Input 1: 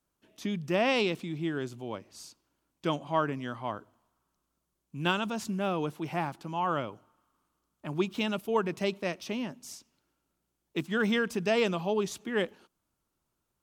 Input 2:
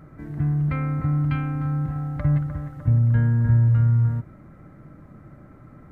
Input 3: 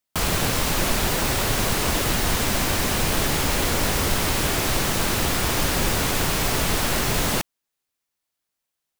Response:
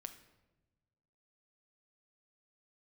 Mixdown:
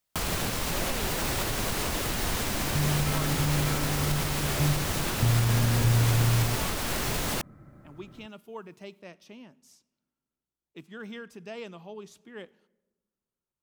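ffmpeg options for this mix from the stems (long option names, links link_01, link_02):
-filter_complex "[0:a]volume=-16dB,asplit=2[link_01][link_02];[link_02]volume=-4.5dB[link_03];[1:a]adelay=2350,volume=-6dB[link_04];[2:a]alimiter=limit=-20dB:level=0:latency=1:release=491,volume=1dB[link_05];[3:a]atrim=start_sample=2205[link_06];[link_03][link_06]afir=irnorm=-1:irlink=0[link_07];[link_01][link_04][link_05][link_07]amix=inputs=4:normalize=0"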